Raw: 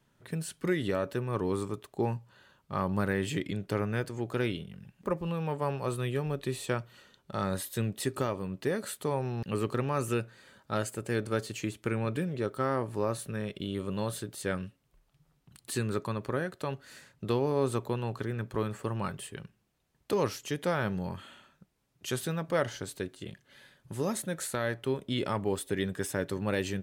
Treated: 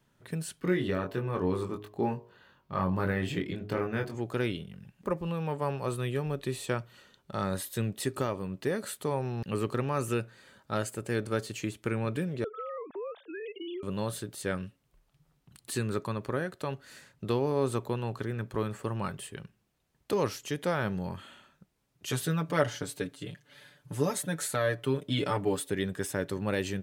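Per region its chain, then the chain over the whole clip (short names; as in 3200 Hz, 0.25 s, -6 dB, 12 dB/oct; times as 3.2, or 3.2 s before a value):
0.6–4.15 bell 8700 Hz -10 dB 1.3 oct + doubler 22 ms -4.5 dB + de-hum 52.29 Hz, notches 21
12.44–13.83 sine-wave speech + compressor, threshold -35 dBFS
22.09–25.7 HPF 61 Hz + comb 6.8 ms, depth 83%
whole clip: dry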